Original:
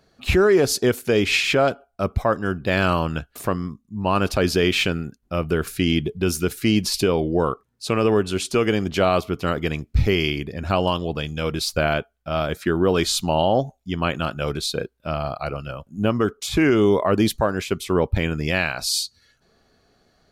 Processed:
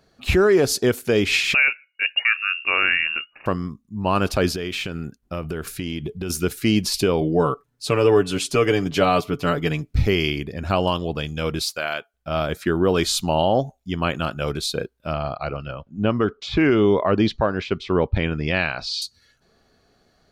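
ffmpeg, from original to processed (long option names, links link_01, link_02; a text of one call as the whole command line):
ffmpeg -i in.wav -filter_complex "[0:a]asettb=1/sr,asplit=3[link_01][link_02][link_03];[link_01]atrim=end=1.544[link_04];[link_02]atrim=start=1.54:end=3.46,asetpts=PTS-STARTPTS,afade=type=in:duration=0.004:curve=qsin,afade=type=out:start_time=1.916:duration=0.004:curve=qsin,lowpass=frequency=2500:width_type=q:width=0.5098,lowpass=frequency=2500:width_type=q:width=0.6013,lowpass=frequency=2500:width_type=q:width=0.9,lowpass=frequency=2500:width_type=q:width=2.563,afreqshift=-2900[link_05];[link_03]atrim=start=3.456[link_06];[link_04][link_05]acrossfade=duration=0.004:curve1=hsin:curve2=qsin[link_07];[link_07][link_06]acrossfade=duration=0.004:curve1=qsin:curve2=hsin,asettb=1/sr,asplit=3[link_08][link_09][link_10];[link_08]atrim=end=4.504[link_11];[link_09]atrim=start=4.5:end=6.3,asetpts=PTS-STARTPTS,afade=type=in:duration=0.004:curve=qsin,afade=type=out:start_time=1.796:duration=0.004:curve=qsin,acompressor=threshold=-23dB:ratio=12:attack=3.2:release=140:knee=1:detection=peak[link_12];[link_10]atrim=start=6.296[link_13];[link_11][link_12]acrossfade=duration=0.004:curve1=hsin:curve2=qsin[link_14];[link_14][link_13]acrossfade=duration=0.004:curve1=qsin:curve2=hsin,asettb=1/sr,asplit=3[link_15][link_16][link_17];[link_15]atrim=end=7.214[link_18];[link_16]atrim=start=7.21:end=9.98,asetpts=PTS-STARTPTS,afade=type=in:duration=0.004:curve=qsin,afade=type=out:start_time=2.766:duration=0.004:curve=qsin,aecho=1:1:6.9:0.65,atrim=end_sample=122157[link_19];[link_17]atrim=start=9.976[link_20];[link_18][link_19]acrossfade=duration=0.004:curve1=hsin:curve2=qsin[link_21];[link_21][link_20]acrossfade=duration=0.004:curve1=qsin:curve2=hsin,asettb=1/sr,asplit=3[link_22][link_23][link_24];[link_22]atrim=end=11.634[link_25];[link_23]atrim=start=11.63:end=12.14,asetpts=PTS-STARTPTS,afade=type=in:duration=0.004:curve=qsin,afade=type=out:start_time=0.506:duration=0.004:curve=qsin,highpass=frequency=1300:poles=1[link_26];[link_24]atrim=start=12.136[link_27];[link_25][link_26]acrossfade=duration=0.004:curve1=hsin:curve2=qsin[link_28];[link_28][link_27]acrossfade=duration=0.004:curve1=qsin:curve2=hsin,asettb=1/sr,asplit=3[link_29][link_30][link_31];[link_29]atrim=end=15.134[link_32];[link_30]atrim=start=15.13:end=19.02,asetpts=PTS-STARTPTS,afade=type=in:duration=0.004:curve=qsin,afade=type=out:start_time=3.886:duration=0.004:curve=qsin,lowpass=frequency=4600:width=0.5412,lowpass=frequency=4600:width=1.3066[link_33];[link_31]atrim=start=19.016[link_34];[link_32][link_33]acrossfade=duration=0.004:curve1=hsin:curve2=qsin[link_35];[link_35][link_34]acrossfade=duration=0.004:curve1=qsin:curve2=hsin" out.wav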